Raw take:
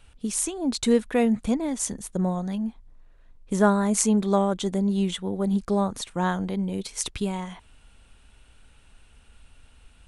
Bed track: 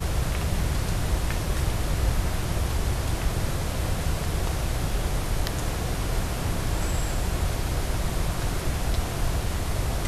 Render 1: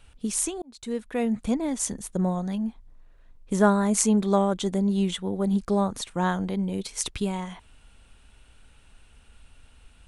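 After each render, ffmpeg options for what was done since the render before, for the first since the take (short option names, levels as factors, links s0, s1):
-filter_complex "[0:a]asplit=2[s0][s1];[s0]atrim=end=0.62,asetpts=PTS-STARTPTS,afade=t=out:st=0.616:d=0.004:c=hsin[s2];[s1]atrim=start=0.62,asetpts=PTS-STARTPTS,afade=t=in:d=1.02[s3];[s2][s3]concat=n=2:v=0:a=1"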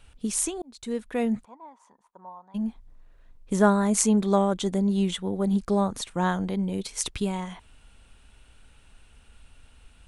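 -filter_complex "[0:a]asplit=3[s0][s1][s2];[s0]afade=t=out:st=1.43:d=0.02[s3];[s1]bandpass=f=970:t=q:w=8.3,afade=t=in:st=1.43:d=0.02,afade=t=out:st=2.54:d=0.02[s4];[s2]afade=t=in:st=2.54:d=0.02[s5];[s3][s4][s5]amix=inputs=3:normalize=0"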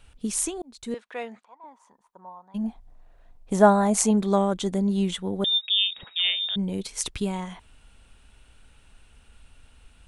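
-filter_complex "[0:a]asettb=1/sr,asplit=3[s0][s1][s2];[s0]atrim=end=0.944[s3];[s1]atrim=start=0.94:end=1.64,asetpts=PTS-STARTPTS,afade=t=in:d=0.004:c=qsin,afade=t=out:st=0.696:d=0.004:c=qsin,highpass=650,lowpass=4900[s4];[s2]atrim=start=1.636[s5];[s3][s4]acrossfade=d=0.004:c1=hsin:c2=qsin[s6];[s6][s5]acrossfade=d=0.004:c1=qsin:c2=hsin,asettb=1/sr,asplit=3[s7][s8][s9];[s7]atrim=end=2.644[s10];[s8]atrim=start=2.64:end=4.11,asetpts=PTS-STARTPTS,afade=t=in:d=0.004:c=qsin,afade=t=out:st=1.466:d=0.004:c=qsin,equalizer=f=730:t=o:w=0.52:g=11.5[s11];[s9]atrim=start=4.106[s12];[s10][s11]acrossfade=d=0.004:c1=hsin:c2=qsin[s13];[s13][s12]acrossfade=d=0.004:c1=qsin:c2=hsin,asettb=1/sr,asplit=3[s14][s15][s16];[s14]atrim=end=5.444[s17];[s15]atrim=start=5.44:end=6.56,asetpts=PTS-STARTPTS,afade=t=in:d=0.004:c=qsin,afade=t=out:st=1.116:d=0.004:c=qsin,lowpass=f=3200:t=q:w=0.5098,lowpass=f=3200:t=q:w=0.6013,lowpass=f=3200:t=q:w=0.9,lowpass=f=3200:t=q:w=2.563,afreqshift=-3800[s18];[s16]atrim=start=6.556[s19];[s17][s18]acrossfade=d=0.004:c1=hsin:c2=qsin[s20];[s20][s19]acrossfade=d=0.004:c1=qsin:c2=hsin"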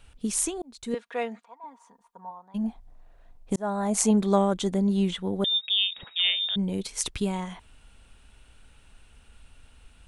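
-filter_complex "[0:a]asettb=1/sr,asplit=3[s0][s1][s2];[s0]atrim=end=0.934[s3];[s1]atrim=start=0.93:end=2.31,asetpts=PTS-STARTPTS,afade=t=in:d=0.004:c=qsin,afade=t=out:st=1.376:d=0.004:c=qsin,aecho=1:1:4.3:0.7,atrim=end_sample=60858[s4];[s2]atrim=start=2.306[s5];[s3][s4]acrossfade=d=0.004:c1=hsin:c2=qsin[s6];[s6][s5]acrossfade=d=0.004:c1=qsin:c2=hsin,asettb=1/sr,asplit=3[s7][s8][s9];[s7]atrim=end=4.704[s10];[s8]atrim=start=4.7:end=6.19,asetpts=PTS-STARTPTS,afade=t=in:d=0.004:c=qsin,afade=t=out:st=1.486:d=0.004:c=qsin,acrossover=split=4500[s11][s12];[s12]acompressor=threshold=0.00447:ratio=4:attack=1:release=60[s13];[s11][s13]amix=inputs=2:normalize=0[s14];[s9]atrim=start=6.186[s15];[s10][s14]acrossfade=d=0.004:c1=hsin:c2=qsin[s16];[s16][s15]acrossfade=d=0.004:c1=qsin:c2=hsin,asplit=2[s17][s18];[s17]atrim=end=3.56,asetpts=PTS-STARTPTS,afade=t=out:st=3.556:d=0.004:c=hsin[s19];[s18]atrim=start=3.56,asetpts=PTS-STARTPTS,afade=t=in:d=0.54[s20];[s19][s20]concat=n=2:v=0:a=1"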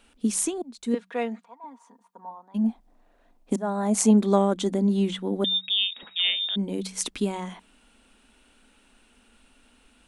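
-af "lowshelf=f=170:t=q:w=3:g=-11,bandreject=f=62.78:t=h:w=4,bandreject=f=125.56:t=h:w=4,bandreject=f=188.34:t=h:w=4"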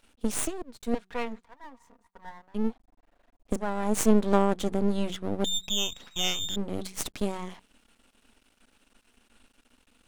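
-af "aeval=exprs='max(val(0),0)':c=same"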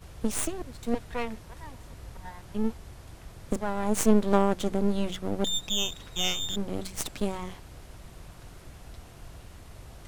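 -filter_complex "[1:a]volume=0.1[s0];[0:a][s0]amix=inputs=2:normalize=0"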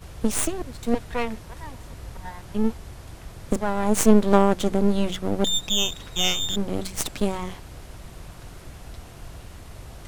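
-af "volume=1.88"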